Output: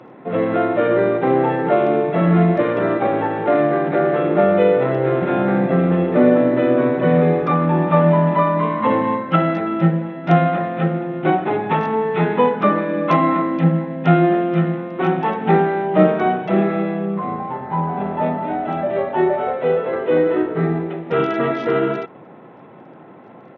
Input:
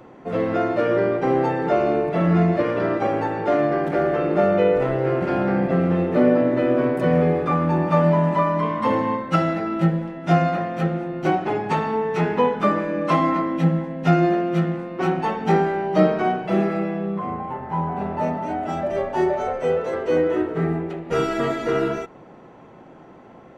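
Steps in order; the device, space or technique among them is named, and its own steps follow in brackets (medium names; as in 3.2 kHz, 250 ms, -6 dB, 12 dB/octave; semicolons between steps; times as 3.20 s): Bluetooth headset (high-pass 110 Hz 24 dB/octave; resampled via 8 kHz; trim +3.5 dB; SBC 64 kbps 48 kHz)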